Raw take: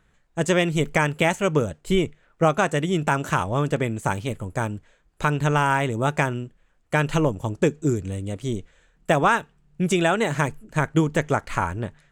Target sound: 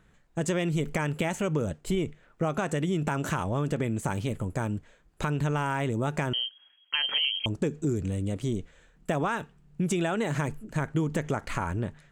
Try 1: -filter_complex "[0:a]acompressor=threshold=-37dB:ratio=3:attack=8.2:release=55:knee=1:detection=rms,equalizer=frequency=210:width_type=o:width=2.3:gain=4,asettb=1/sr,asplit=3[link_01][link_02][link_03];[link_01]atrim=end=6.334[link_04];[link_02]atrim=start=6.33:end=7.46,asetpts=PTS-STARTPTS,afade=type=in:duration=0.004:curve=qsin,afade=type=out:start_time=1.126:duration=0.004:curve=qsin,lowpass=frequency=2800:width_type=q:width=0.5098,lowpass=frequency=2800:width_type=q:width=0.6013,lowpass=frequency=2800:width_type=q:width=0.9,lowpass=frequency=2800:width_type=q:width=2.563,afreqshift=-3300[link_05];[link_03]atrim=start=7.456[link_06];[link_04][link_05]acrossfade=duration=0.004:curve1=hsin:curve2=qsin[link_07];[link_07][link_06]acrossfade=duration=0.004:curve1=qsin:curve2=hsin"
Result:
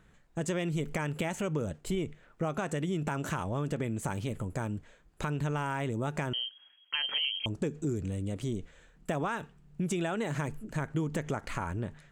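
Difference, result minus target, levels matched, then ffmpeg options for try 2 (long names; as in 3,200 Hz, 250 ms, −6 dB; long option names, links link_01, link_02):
downward compressor: peak gain reduction +4.5 dB
-filter_complex "[0:a]acompressor=threshold=-30.5dB:ratio=3:attack=8.2:release=55:knee=1:detection=rms,equalizer=frequency=210:width_type=o:width=2.3:gain=4,asettb=1/sr,asplit=3[link_01][link_02][link_03];[link_01]atrim=end=6.334[link_04];[link_02]atrim=start=6.33:end=7.46,asetpts=PTS-STARTPTS,afade=type=in:duration=0.004:curve=qsin,afade=type=out:start_time=1.126:duration=0.004:curve=qsin,lowpass=frequency=2800:width_type=q:width=0.5098,lowpass=frequency=2800:width_type=q:width=0.6013,lowpass=frequency=2800:width_type=q:width=0.9,lowpass=frequency=2800:width_type=q:width=2.563,afreqshift=-3300[link_05];[link_03]atrim=start=7.456[link_06];[link_04][link_05]acrossfade=duration=0.004:curve1=hsin:curve2=qsin[link_07];[link_07][link_06]acrossfade=duration=0.004:curve1=qsin:curve2=hsin"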